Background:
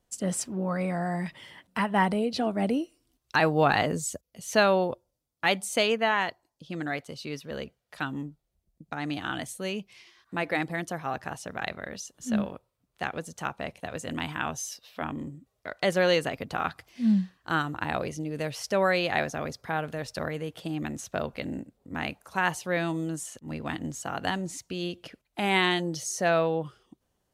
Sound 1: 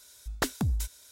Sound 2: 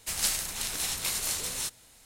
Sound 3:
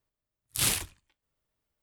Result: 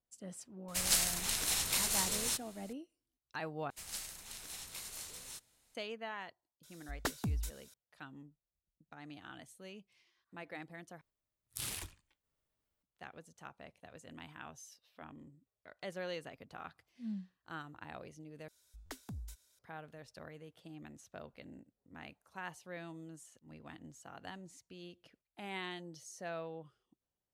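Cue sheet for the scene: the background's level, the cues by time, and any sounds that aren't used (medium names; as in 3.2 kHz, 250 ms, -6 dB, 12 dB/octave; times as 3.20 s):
background -18.5 dB
0.68 s: add 2 -2 dB
3.70 s: replace with 2 -15.5 dB
6.63 s: add 1 -7.5 dB
11.01 s: replace with 3 -4 dB + compression 5:1, threshold -33 dBFS
18.48 s: replace with 1 -17 dB + buffer glitch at 0.37 s, times 4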